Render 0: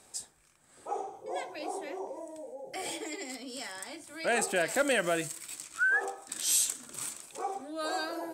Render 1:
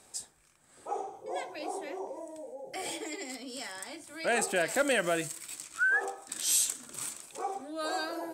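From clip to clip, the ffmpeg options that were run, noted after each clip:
-af anull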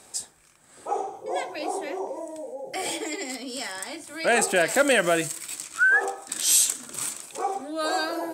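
-af "lowshelf=f=68:g=-6.5,volume=7.5dB"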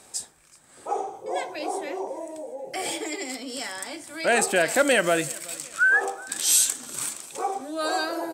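-af "aecho=1:1:376|752|1128:0.0708|0.0319|0.0143"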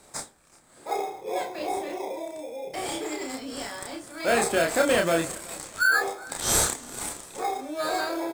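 -filter_complex "[0:a]asplit=2[a][b];[b]acrusher=samples=15:mix=1:aa=0.000001,volume=-4dB[c];[a][c]amix=inputs=2:normalize=0,asplit=2[d][e];[e]adelay=30,volume=-3dB[f];[d][f]amix=inputs=2:normalize=0,volume=-6dB"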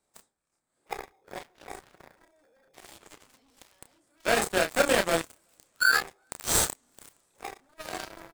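-af "aeval=exprs='0.355*(cos(1*acos(clip(val(0)/0.355,-1,1)))-cos(1*PI/2))+0.00891*(cos(3*acos(clip(val(0)/0.355,-1,1)))-cos(3*PI/2))+0.0501*(cos(7*acos(clip(val(0)/0.355,-1,1)))-cos(7*PI/2))':c=same"

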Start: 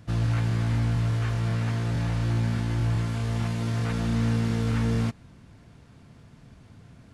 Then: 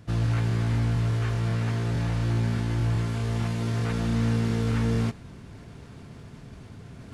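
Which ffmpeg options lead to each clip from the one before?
-af "equalizer=f=400:t=o:w=0.26:g=6,areverse,acompressor=mode=upward:threshold=-35dB:ratio=2.5,areverse"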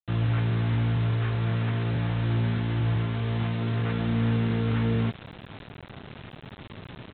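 -af "highpass=f=67:w=0.5412,highpass=f=67:w=1.3066,aresample=8000,acrusher=bits=6:mix=0:aa=0.000001,aresample=44100"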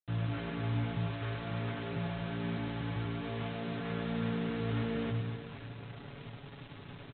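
-af "aecho=1:1:7.1:0.54,aecho=1:1:100|250|475|812.5|1319:0.631|0.398|0.251|0.158|0.1,volume=-9dB"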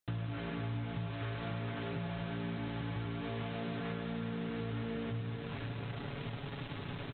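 -af "acompressor=threshold=-43dB:ratio=6,volume=7dB"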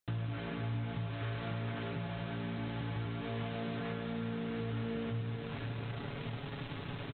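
-filter_complex "[0:a]asplit=2[a][b];[b]adelay=26,volume=-13dB[c];[a][c]amix=inputs=2:normalize=0"

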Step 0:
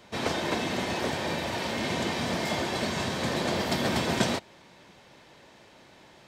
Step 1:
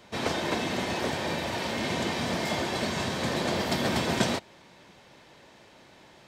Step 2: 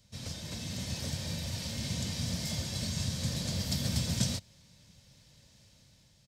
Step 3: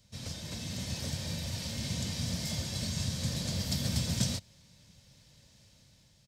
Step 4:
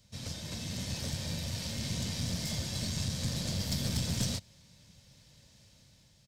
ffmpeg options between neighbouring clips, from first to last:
-af anull
-af "firequalizer=gain_entry='entry(100,0);entry(370,-27);entry(530,-18);entry(750,-26);entry(5000,-4)':delay=0.05:min_phase=1,dynaudnorm=f=190:g=7:m=5.5dB"
-af "asoftclip=type=hard:threshold=-18.5dB"
-af "aeval=exprs='(tanh(20*val(0)+0.35)-tanh(0.35))/20':c=same,volume=1.5dB"

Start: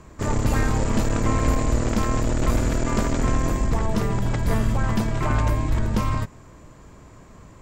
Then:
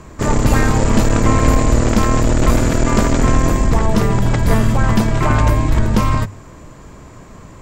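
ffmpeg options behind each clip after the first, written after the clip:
-af "bandreject=f=50:t=h:w=6,bandreject=f=100:t=h:w=6,volume=8.5dB"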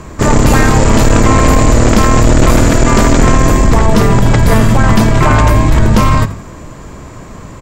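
-filter_complex "[0:a]asplit=4[a][b][c][d];[b]adelay=84,afreqshift=44,volume=-17dB[e];[c]adelay=168,afreqshift=88,volume=-26.1dB[f];[d]adelay=252,afreqshift=132,volume=-35.2dB[g];[a][e][f][g]amix=inputs=4:normalize=0,apsyclip=10dB,volume=-2dB"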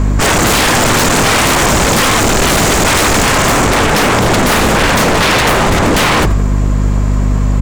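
-af "aeval=exprs='val(0)+0.141*(sin(2*PI*50*n/s)+sin(2*PI*2*50*n/s)/2+sin(2*PI*3*50*n/s)/3+sin(2*PI*4*50*n/s)/4+sin(2*PI*5*50*n/s)/5)':c=same,aeval=exprs='0.224*(abs(mod(val(0)/0.224+3,4)-2)-1)':c=same,volume=7.5dB"

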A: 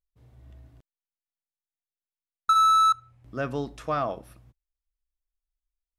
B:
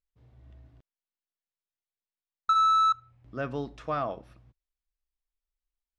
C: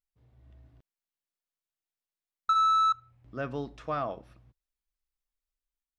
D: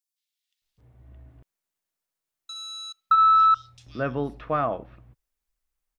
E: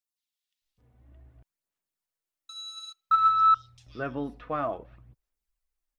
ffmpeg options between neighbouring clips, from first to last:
-af "lowpass=4.9k,volume=-3dB"
-af "dynaudnorm=f=160:g=7:m=3.5dB,volume=-5dB"
-filter_complex "[0:a]acrossover=split=3400[a][b];[a]adelay=620[c];[c][b]amix=inputs=2:normalize=0,volume=7dB"
-af "aphaser=in_gain=1:out_gain=1:delay=4.1:decay=0.41:speed=0.57:type=sinusoidal,volume=-5.5dB"

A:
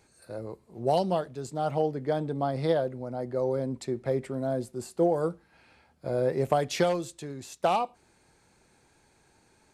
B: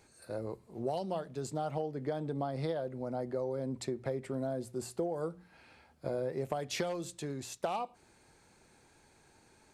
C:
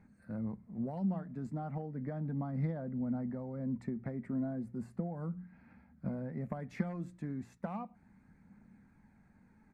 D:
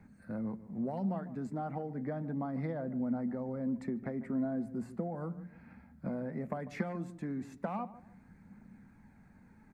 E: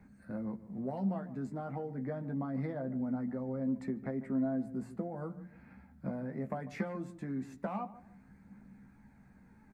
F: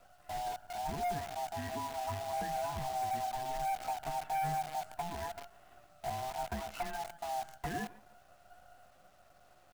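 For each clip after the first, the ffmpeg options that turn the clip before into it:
-af "bandreject=f=60:t=h:w=6,bandreject=f=120:t=h:w=6,bandreject=f=180:t=h:w=6,acompressor=threshold=-32dB:ratio=6"
-af "firequalizer=gain_entry='entry(140,0);entry(200,13);entry(360,-13);entry(730,-9);entry(2000,-5);entry(3000,-25)':delay=0.05:min_phase=1,aphaser=in_gain=1:out_gain=1:delay=3.2:decay=0.24:speed=0.35:type=triangular,volume=1dB"
-filter_complex "[0:a]acrossover=split=210|940[a][b][c];[a]acompressor=threshold=-51dB:ratio=6[d];[d][b][c]amix=inputs=3:normalize=0,asplit=2[e][f];[f]adelay=147,lowpass=f=930:p=1,volume=-14dB,asplit=2[g][h];[h]adelay=147,lowpass=f=930:p=1,volume=0.34,asplit=2[i][j];[j]adelay=147,lowpass=f=930:p=1,volume=0.34[k];[e][g][i][k]amix=inputs=4:normalize=0,volume=4.5dB"
-filter_complex "[0:a]asplit=2[a][b];[b]adelay=15,volume=-7dB[c];[a][c]amix=inputs=2:normalize=0,volume=-1.5dB"
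-af "afftfilt=real='real(if(lt(b,1008),b+24*(1-2*mod(floor(b/24),2)),b),0)':imag='imag(if(lt(b,1008),b+24*(1-2*mod(floor(b/24),2)),b),0)':win_size=2048:overlap=0.75,volume=31.5dB,asoftclip=hard,volume=-31.5dB,acrusher=bits=8:dc=4:mix=0:aa=0.000001"

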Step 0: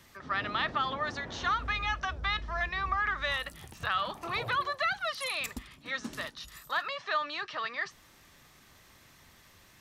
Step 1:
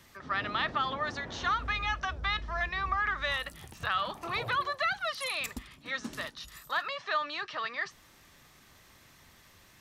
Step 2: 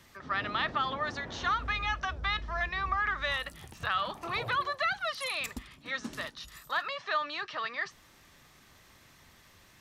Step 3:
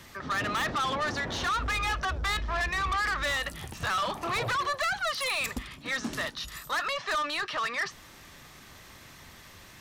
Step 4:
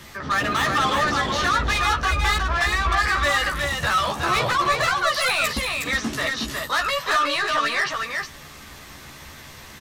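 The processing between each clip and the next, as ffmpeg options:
-af anull
-af "highshelf=f=10k:g=-3.5"
-af "asoftclip=type=tanh:threshold=-34dB,volume=8.5dB"
-filter_complex "[0:a]asplit=2[a][b];[b]adelay=14,volume=-3.5dB[c];[a][c]amix=inputs=2:normalize=0,asplit=2[d][e];[e]aecho=0:1:313|365:0.1|0.631[f];[d][f]amix=inputs=2:normalize=0,volume=5.5dB"

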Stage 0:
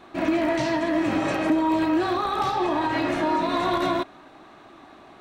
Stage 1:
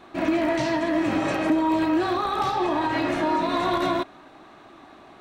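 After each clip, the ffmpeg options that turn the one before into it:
-af anull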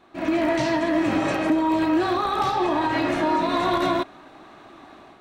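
-af "dynaudnorm=f=100:g=5:m=9dB,volume=-7dB"

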